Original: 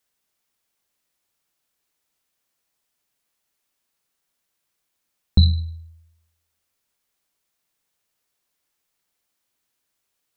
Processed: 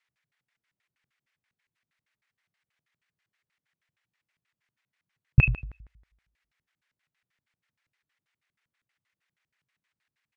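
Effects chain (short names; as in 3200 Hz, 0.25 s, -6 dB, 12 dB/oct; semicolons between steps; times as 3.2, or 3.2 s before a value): LFO band-pass square 6.3 Hz 200–3000 Hz; pitch shift -7.5 st; gain +7.5 dB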